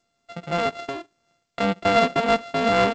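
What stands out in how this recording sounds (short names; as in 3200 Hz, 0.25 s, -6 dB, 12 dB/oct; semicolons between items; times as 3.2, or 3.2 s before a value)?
a buzz of ramps at a fixed pitch in blocks of 64 samples; G.722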